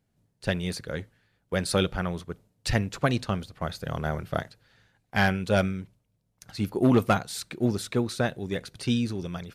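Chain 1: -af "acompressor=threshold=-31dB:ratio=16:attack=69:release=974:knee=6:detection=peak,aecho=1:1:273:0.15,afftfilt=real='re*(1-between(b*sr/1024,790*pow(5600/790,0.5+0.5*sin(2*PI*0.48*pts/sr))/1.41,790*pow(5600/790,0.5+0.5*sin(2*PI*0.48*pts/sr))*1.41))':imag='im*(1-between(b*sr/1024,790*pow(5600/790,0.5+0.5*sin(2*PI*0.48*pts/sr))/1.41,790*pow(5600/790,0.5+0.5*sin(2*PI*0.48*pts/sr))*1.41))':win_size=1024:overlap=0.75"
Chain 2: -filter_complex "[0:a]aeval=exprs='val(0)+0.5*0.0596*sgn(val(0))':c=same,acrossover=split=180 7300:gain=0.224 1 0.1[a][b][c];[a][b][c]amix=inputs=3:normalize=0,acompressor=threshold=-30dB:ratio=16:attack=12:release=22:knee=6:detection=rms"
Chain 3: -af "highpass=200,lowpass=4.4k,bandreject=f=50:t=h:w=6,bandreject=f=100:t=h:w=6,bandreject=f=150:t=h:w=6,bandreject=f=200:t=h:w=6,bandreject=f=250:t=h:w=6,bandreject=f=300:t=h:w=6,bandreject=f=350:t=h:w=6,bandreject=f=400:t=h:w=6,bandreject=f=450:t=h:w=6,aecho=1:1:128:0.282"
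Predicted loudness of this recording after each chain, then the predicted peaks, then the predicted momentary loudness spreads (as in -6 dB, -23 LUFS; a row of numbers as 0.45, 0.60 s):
-36.5, -32.0, -30.0 LUFS; -14.0, -16.0, -8.0 dBFS; 10, 3, 14 LU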